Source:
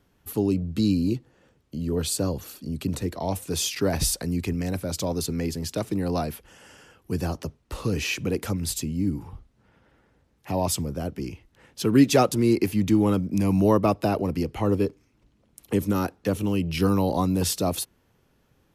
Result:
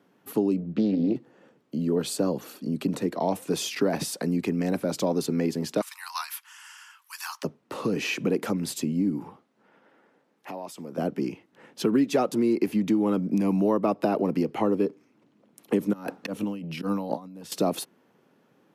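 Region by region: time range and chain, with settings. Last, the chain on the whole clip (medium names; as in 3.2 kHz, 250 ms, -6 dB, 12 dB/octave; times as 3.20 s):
0.60–1.16 s: distance through air 190 m + hum notches 60/120/180/240/300/360/420/480/540/600 Hz + loudspeaker Doppler distortion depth 0.33 ms
5.81–7.43 s: steep high-pass 930 Hz 72 dB/octave + treble shelf 3.7 kHz +11.5 dB
9.32–10.98 s: high-pass 370 Hz 6 dB/octave + compression 8:1, threshold -37 dBFS
15.93–17.52 s: peaking EQ 380 Hz -13 dB 0.2 oct + slow attack 407 ms + compressor with a negative ratio -33 dBFS, ratio -0.5
whole clip: compression 5:1, threshold -24 dBFS; high-pass 180 Hz 24 dB/octave; treble shelf 2.8 kHz -11 dB; trim +5.5 dB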